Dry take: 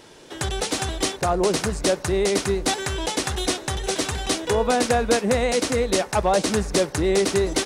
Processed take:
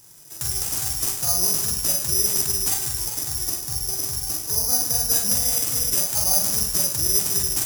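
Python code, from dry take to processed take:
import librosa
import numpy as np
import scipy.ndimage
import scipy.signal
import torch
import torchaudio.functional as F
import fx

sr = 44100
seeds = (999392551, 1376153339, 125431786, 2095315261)

y = fx.peak_eq(x, sr, hz=11000.0, db=-12.5, octaves=2.8, at=(2.86, 4.94))
y = fx.doubler(y, sr, ms=44.0, db=-2.5)
y = fx.echo_wet_highpass(y, sr, ms=153, feedback_pct=70, hz=2000.0, wet_db=-8.5)
y = fx.rev_schroeder(y, sr, rt60_s=1.2, comb_ms=32, drr_db=6.0)
y = (np.kron(y[::8], np.eye(8)[0]) * 8)[:len(y)]
y = fx.graphic_eq_10(y, sr, hz=(125, 250, 500, 2000, 4000, 8000), db=(11, -6, -7, -5, -5, 6))
y = F.gain(torch.from_numpy(y), -13.0).numpy()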